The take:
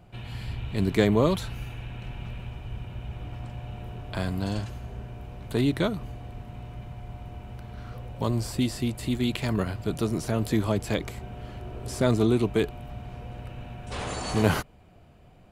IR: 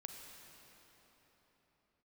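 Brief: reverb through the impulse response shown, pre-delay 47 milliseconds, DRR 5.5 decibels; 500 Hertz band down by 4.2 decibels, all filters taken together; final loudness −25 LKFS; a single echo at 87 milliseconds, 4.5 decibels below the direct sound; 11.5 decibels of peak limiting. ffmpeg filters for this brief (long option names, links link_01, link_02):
-filter_complex "[0:a]equalizer=frequency=500:width_type=o:gain=-5.5,alimiter=limit=-19.5dB:level=0:latency=1,aecho=1:1:87:0.596,asplit=2[link_01][link_02];[1:a]atrim=start_sample=2205,adelay=47[link_03];[link_02][link_03]afir=irnorm=-1:irlink=0,volume=-1.5dB[link_04];[link_01][link_04]amix=inputs=2:normalize=0,volume=7dB"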